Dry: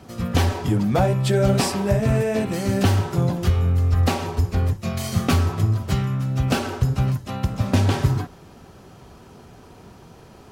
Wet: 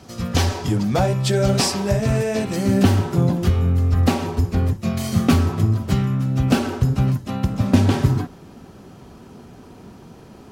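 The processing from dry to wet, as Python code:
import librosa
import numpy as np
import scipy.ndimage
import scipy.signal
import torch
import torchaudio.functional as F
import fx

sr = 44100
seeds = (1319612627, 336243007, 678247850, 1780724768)

y = fx.peak_eq(x, sr, hz=fx.steps((0.0, 5500.0), (2.56, 240.0)), db=7.0, octaves=1.2)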